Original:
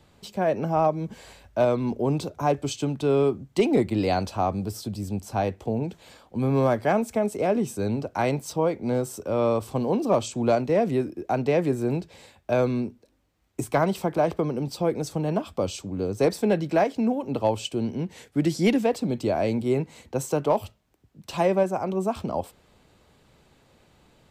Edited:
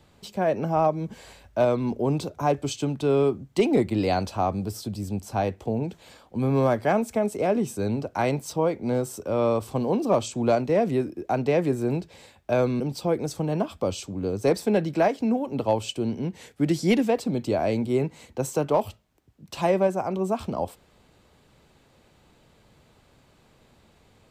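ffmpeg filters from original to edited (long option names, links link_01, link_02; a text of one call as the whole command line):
ffmpeg -i in.wav -filter_complex "[0:a]asplit=2[link_01][link_02];[link_01]atrim=end=12.802[link_03];[link_02]atrim=start=14.558[link_04];[link_03][link_04]acrossfade=duration=0.004:curve1=hsin:curve2=hsin" out.wav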